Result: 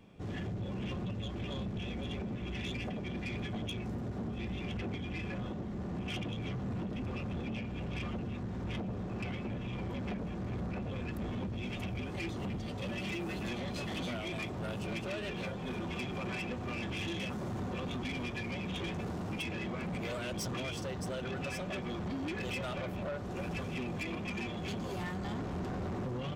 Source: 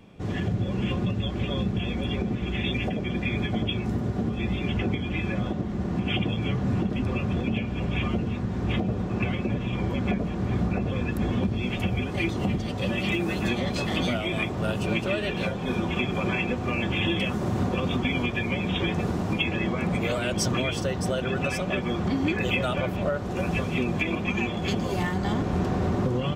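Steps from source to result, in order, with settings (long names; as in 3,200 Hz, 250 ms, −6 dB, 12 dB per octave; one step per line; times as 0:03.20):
soft clipping −26.5 dBFS, distortion −11 dB
level −7 dB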